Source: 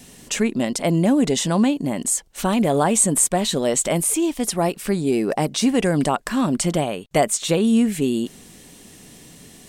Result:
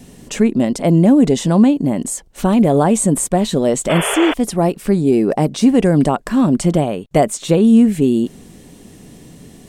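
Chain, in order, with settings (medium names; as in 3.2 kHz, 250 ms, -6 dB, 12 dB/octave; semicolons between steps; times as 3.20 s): painted sound noise, 3.89–4.34 s, 390–3500 Hz -21 dBFS; tilt shelf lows +5.5 dB, about 890 Hz; trim +2.5 dB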